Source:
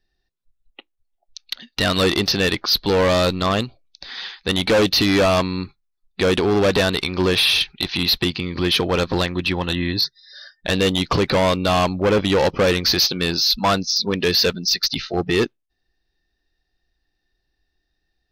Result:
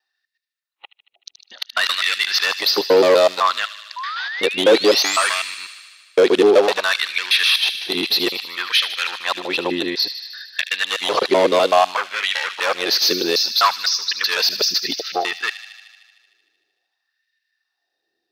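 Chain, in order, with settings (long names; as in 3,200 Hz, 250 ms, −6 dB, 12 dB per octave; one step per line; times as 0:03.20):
reversed piece by piece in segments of 126 ms
auto-filter high-pass sine 0.59 Hz 360–2,000 Hz
sound drawn into the spectrogram rise, 0:03.96–0:05.28, 960–9,600 Hz −28 dBFS
on a send: delay with a high-pass on its return 76 ms, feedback 74%, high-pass 2,600 Hz, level −10 dB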